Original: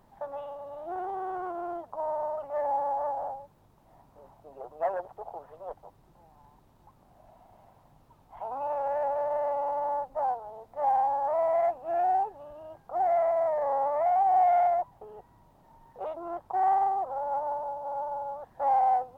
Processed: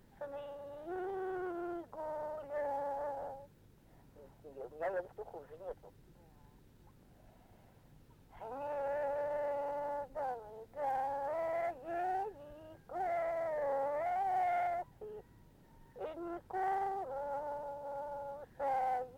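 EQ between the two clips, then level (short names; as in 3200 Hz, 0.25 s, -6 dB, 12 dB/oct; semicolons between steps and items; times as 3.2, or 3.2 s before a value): band shelf 860 Hz -11.5 dB 1.2 oct; 0.0 dB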